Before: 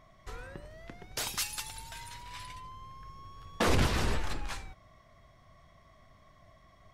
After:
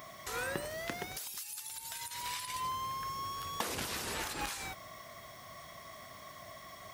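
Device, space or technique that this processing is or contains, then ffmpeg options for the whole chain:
de-esser from a sidechain: -filter_complex "[0:a]aemphasis=mode=production:type=bsi,asplit=2[link_01][link_02];[link_02]highpass=6500,apad=whole_len=305804[link_03];[link_01][link_03]sidechaincompress=threshold=-53dB:ratio=10:attack=2.2:release=72,highpass=54,volume=11.5dB"

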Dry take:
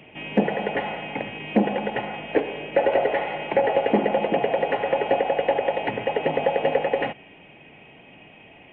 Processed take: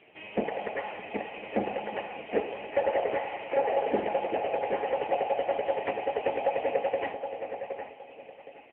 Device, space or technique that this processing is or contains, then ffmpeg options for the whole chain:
satellite phone: -filter_complex "[0:a]asplit=3[link_01][link_02][link_03];[link_01]afade=type=out:start_time=0.78:duration=0.02[link_04];[link_02]highpass=frequency=75:poles=1,afade=type=in:start_time=0.78:duration=0.02,afade=type=out:start_time=1.94:duration=0.02[link_05];[link_03]afade=type=in:start_time=1.94:duration=0.02[link_06];[link_04][link_05][link_06]amix=inputs=3:normalize=0,highpass=330,lowpass=3200,aecho=1:1:603:0.0944,asplit=2[link_07][link_08];[link_08]adelay=767,lowpass=frequency=2600:poles=1,volume=-7dB,asplit=2[link_09][link_10];[link_10]adelay=767,lowpass=frequency=2600:poles=1,volume=0.27,asplit=2[link_11][link_12];[link_12]adelay=767,lowpass=frequency=2600:poles=1,volume=0.27[link_13];[link_07][link_09][link_11][link_13]amix=inputs=4:normalize=0,volume=-4dB" -ar 8000 -c:a libopencore_amrnb -b:a 6700

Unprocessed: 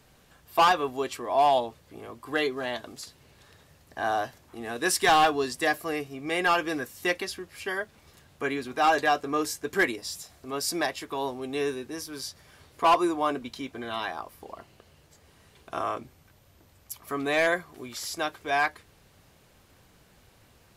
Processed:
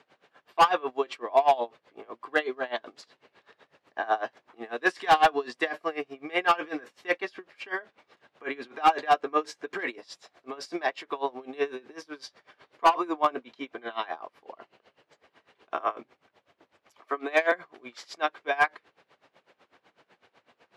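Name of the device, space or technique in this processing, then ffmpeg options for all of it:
helicopter radio: -filter_complex "[0:a]highpass=380,lowpass=2900,aeval=exprs='val(0)*pow(10,-22*(0.5-0.5*cos(2*PI*8*n/s))/20)':channel_layout=same,asoftclip=type=hard:threshold=-19dB,asettb=1/sr,asplit=3[link_01][link_02][link_03];[link_01]atrim=end=17.004[link_04];[link_02]atrim=start=17:end=17.52,asetpts=PTS-STARTPTS,afade=type=in:duration=0.004:curve=qsin,afade=type=out:start_time=0.516:duration=0.004:curve=qsin,highpass=frequency=250:width=0.5412,highpass=frequency=250:width=1.3066[link_05];[link_03]atrim=start=17.516[link_06];[link_04][link_05]acrossfade=duration=0.004:curve1=hsin:curve2=qsin[link_07];[link_07][link_06]acrossfade=duration=0.004:curve1=qsin:curve2=hsin,volume=6.5dB"

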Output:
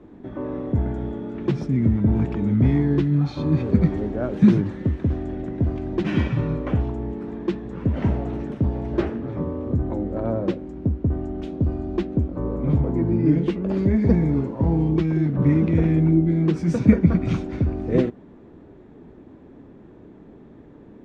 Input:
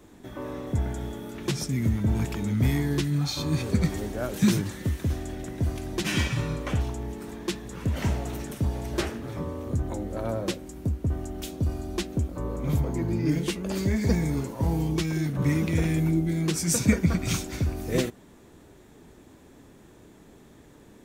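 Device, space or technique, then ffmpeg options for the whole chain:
phone in a pocket: -af "lowpass=3400,equalizer=frequency=270:width_type=o:width=2.1:gain=5.5,highshelf=frequency=2200:gain=-12,volume=2.5dB"

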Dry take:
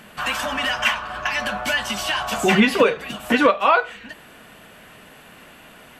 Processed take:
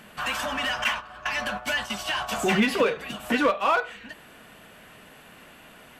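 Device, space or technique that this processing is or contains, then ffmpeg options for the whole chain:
parallel distortion: -filter_complex "[0:a]asettb=1/sr,asplit=3[link_01][link_02][link_03];[link_01]atrim=end=0.844[link_04];[link_02]atrim=start=0.84:end=2.29,asetpts=PTS-STARTPTS,afade=type=in:duration=0.004:curve=qsin,afade=type=out:start_time=1.446:duration=0.004:curve=qsin,agate=range=-9dB:threshold=-26dB:ratio=16:detection=peak[link_05];[link_03]atrim=start=2.286[link_06];[link_04][link_05]acrossfade=duration=0.004:curve1=hsin:curve2=qsin[link_07];[link_07][link_06]acrossfade=duration=0.004:curve1=qsin:curve2=hsin,asplit=2[link_08][link_09];[link_09]asoftclip=type=hard:threshold=-21dB,volume=-4dB[link_10];[link_08][link_10]amix=inputs=2:normalize=0,volume=-8dB"

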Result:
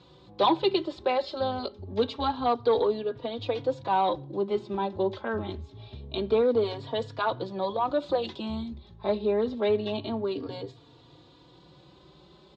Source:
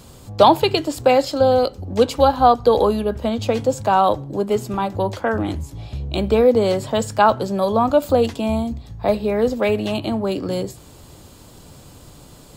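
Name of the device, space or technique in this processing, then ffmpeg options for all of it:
barber-pole flanger into a guitar amplifier: -filter_complex "[0:a]asettb=1/sr,asplit=3[link_01][link_02][link_03];[link_01]atrim=end=7.994[link_04];[link_02]atrim=start=7.99:end=8.68,asetpts=PTS-STARTPTS,afade=type=in:duration=0.004:curve=qsin,afade=type=out:start_time=0.686:duration=0.004:curve=qsin,highshelf=frequency=5500:gain=8.5[link_05];[link_03]atrim=start=8.676[link_06];[link_04][link_05]acrossfade=duration=0.004:curve1=hsin:curve2=qsin[link_07];[link_07][link_06]acrossfade=duration=0.004:curve1=qsin:curve2=hsin,asplit=2[link_08][link_09];[link_09]adelay=3.6,afreqshift=0.26[link_10];[link_08][link_10]amix=inputs=2:normalize=1,asoftclip=type=tanh:threshold=-8.5dB,highpass=77,equalizer=frequency=380:width_type=q:width=4:gain=9,equalizer=frequency=1000:width_type=q:width=4:gain=5,equalizer=frequency=3700:width_type=q:width=4:gain=10,lowpass=frequency=4500:width=0.5412,lowpass=frequency=4500:width=1.3066,volume=-8.5dB"

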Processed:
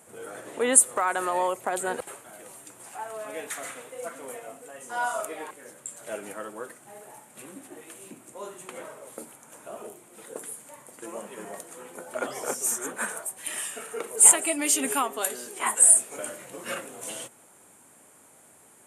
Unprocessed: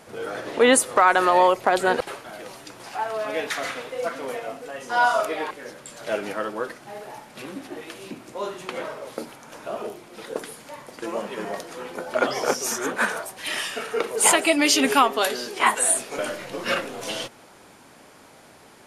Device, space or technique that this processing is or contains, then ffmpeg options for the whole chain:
budget condenser microphone: -af "highpass=75,highshelf=frequency=6400:width_type=q:width=3:gain=9,volume=-9dB"

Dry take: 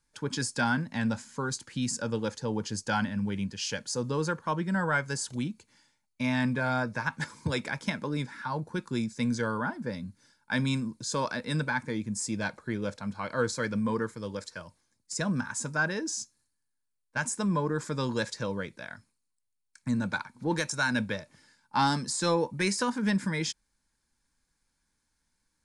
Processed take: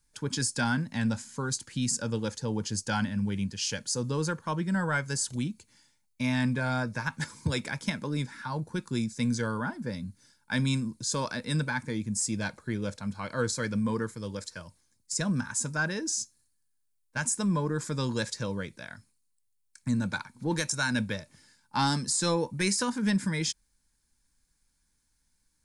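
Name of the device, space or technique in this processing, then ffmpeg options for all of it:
smiley-face EQ: -af "lowshelf=frequency=110:gain=6.5,equalizer=frequency=830:width_type=o:width=2.6:gain=-3,highshelf=frequency=6700:gain=8"

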